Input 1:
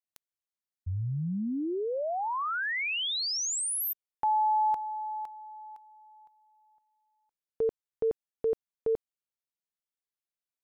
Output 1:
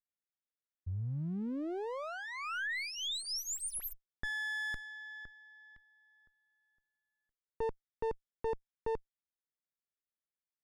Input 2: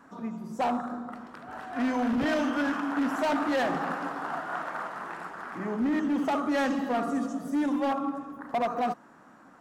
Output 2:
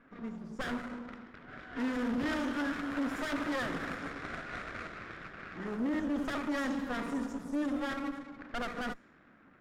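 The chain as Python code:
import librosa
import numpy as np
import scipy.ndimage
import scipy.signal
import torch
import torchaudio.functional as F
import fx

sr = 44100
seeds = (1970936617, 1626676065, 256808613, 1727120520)

y = fx.lower_of_two(x, sr, delay_ms=0.56)
y = fx.env_lowpass(y, sr, base_hz=2300.0, full_db=-28.5)
y = F.gain(torch.from_numpy(y), -5.0).numpy()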